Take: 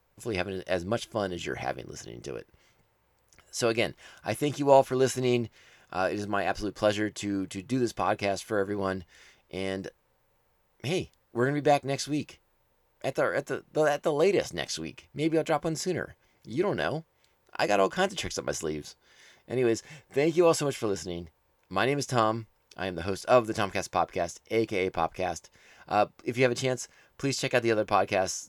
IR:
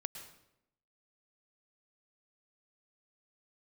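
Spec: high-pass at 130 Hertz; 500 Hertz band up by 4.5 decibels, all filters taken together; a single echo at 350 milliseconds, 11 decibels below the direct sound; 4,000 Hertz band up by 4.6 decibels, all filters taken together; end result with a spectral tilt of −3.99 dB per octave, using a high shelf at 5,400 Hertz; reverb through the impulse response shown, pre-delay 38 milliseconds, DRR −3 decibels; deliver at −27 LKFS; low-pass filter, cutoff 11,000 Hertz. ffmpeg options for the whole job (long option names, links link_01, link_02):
-filter_complex "[0:a]highpass=130,lowpass=11000,equalizer=frequency=500:width_type=o:gain=5.5,equalizer=frequency=4000:width_type=o:gain=4,highshelf=frequency=5400:gain=5,aecho=1:1:350:0.282,asplit=2[link_01][link_02];[1:a]atrim=start_sample=2205,adelay=38[link_03];[link_02][link_03]afir=irnorm=-1:irlink=0,volume=4.5dB[link_04];[link_01][link_04]amix=inputs=2:normalize=0,volume=-6.5dB"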